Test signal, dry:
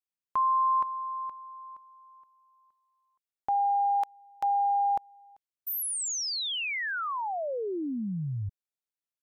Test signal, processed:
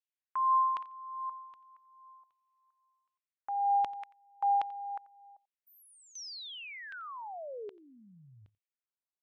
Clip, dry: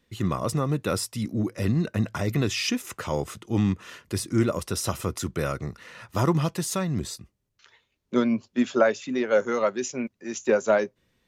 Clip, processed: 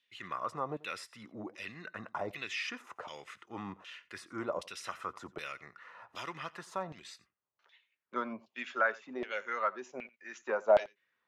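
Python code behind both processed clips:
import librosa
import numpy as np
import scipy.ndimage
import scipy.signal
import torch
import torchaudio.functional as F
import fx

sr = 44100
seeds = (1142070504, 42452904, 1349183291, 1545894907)

p1 = fx.filter_lfo_bandpass(x, sr, shape='saw_down', hz=1.3, low_hz=670.0, high_hz=3200.0, q=2.4)
y = p1 + fx.echo_single(p1, sr, ms=88, db=-21.5, dry=0)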